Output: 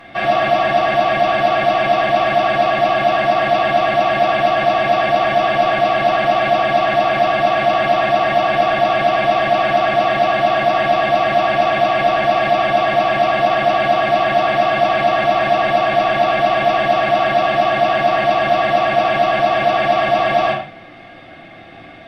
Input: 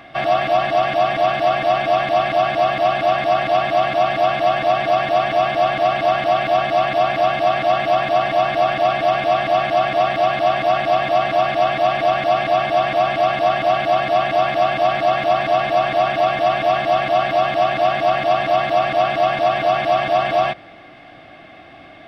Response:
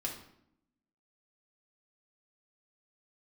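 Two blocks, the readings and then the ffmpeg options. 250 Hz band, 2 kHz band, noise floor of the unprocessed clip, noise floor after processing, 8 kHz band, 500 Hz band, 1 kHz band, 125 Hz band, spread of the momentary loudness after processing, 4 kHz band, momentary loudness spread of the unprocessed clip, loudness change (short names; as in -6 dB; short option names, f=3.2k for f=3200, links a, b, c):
+4.5 dB, +4.5 dB, -42 dBFS, -38 dBFS, n/a, +2.5 dB, +2.0 dB, +2.0 dB, 1 LU, +2.5 dB, 1 LU, +2.5 dB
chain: -filter_complex "[1:a]atrim=start_sample=2205,afade=t=out:st=0.17:d=0.01,atrim=end_sample=7938,asetrate=31752,aresample=44100[a];[0:a][a]afir=irnorm=-1:irlink=0"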